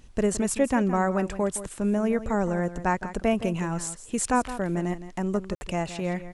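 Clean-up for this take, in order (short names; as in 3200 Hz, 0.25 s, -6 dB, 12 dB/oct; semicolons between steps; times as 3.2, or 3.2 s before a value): room tone fill 5.55–5.61; expander -35 dBFS, range -21 dB; inverse comb 0.166 s -13 dB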